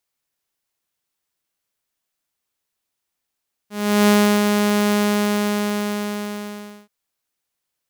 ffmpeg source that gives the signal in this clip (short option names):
-f lavfi -i "aevalsrc='0.376*(2*mod(207*t,1)-1)':d=3.18:s=44100,afade=t=in:d=0.375,afade=t=out:st=0.375:d=0.345:silence=0.596,afade=t=out:st=1.24:d=1.94"